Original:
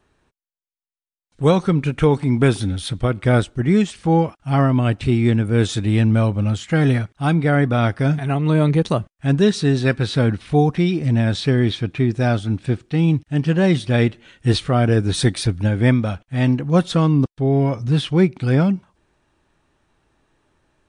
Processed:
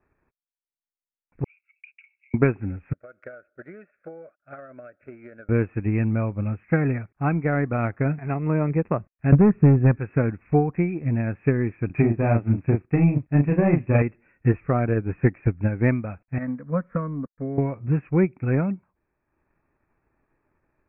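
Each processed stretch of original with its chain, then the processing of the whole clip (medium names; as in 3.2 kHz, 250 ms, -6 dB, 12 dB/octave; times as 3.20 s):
1.44–2.34 s: companding laws mixed up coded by A + Chebyshev high-pass 2.6 kHz, order 5 + comb 1.4 ms, depth 56%
2.93–5.49 s: two resonant band-passes 930 Hz, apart 1.3 oct + compression 20:1, threshold -31 dBFS
9.32–9.97 s: RIAA curve playback + hard clipper -4.5 dBFS
11.86–14.02 s: dynamic bell 1.5 kHz, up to -7 dB, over -42 dBFS, Q 2.6 + waveshaping leveller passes 1 + doubling 35 ms -2.5 dB
16.38–17.58 s: peaking EQ 3.4 kHz +8.5 dB 1.3 oct + compression 1.5:1, threshold -19 dBFS + static phaser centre 530 Hz, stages 8
whole clip: Chebyshev low-pass 2.6 kHz, order 10; transient shaper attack +7 dB, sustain -5 dB; trim -7 dB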